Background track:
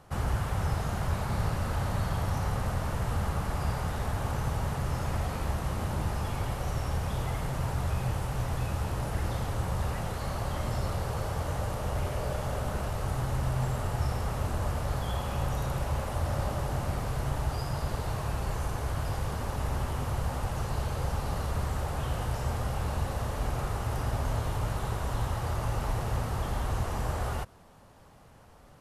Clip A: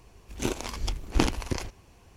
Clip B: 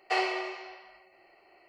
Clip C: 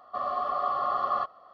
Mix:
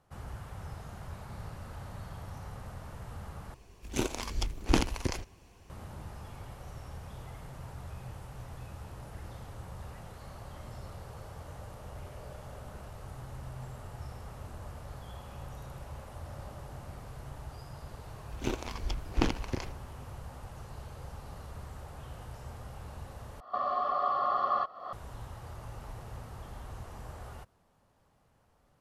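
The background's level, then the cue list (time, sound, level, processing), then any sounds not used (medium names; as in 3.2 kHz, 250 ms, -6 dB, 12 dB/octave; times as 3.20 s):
background track -13.5 dB
3.54 s: replace with A -2 dB
18.02 s: add A -4 dB + peaking EQ 9.9 kHz -12 dB 1.1 oct
23.40 s: replace with C -1.5 dB + recorder AGC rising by 59 dB/s
not used: B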